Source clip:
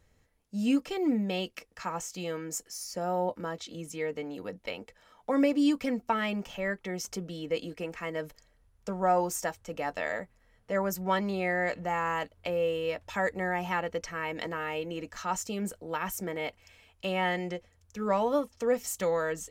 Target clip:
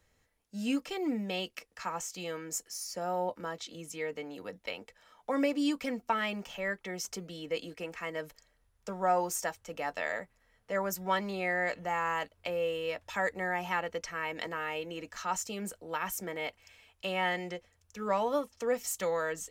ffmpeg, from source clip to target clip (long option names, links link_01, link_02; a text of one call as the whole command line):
ffmpeg -i in.wav -filter_complex "[0:a]lowshelf=frequency=490:gain=-7,acrossover=split=120|3700[link_01][link_02][link_03];[link_01]acrusher=samples=19:mix=1:aa=0.000001:lfo=1:lforange=11.4:lforate=0.48[link_04];[link_04][link_02][link_03]amix=inputs=3:normalize=0" out.wav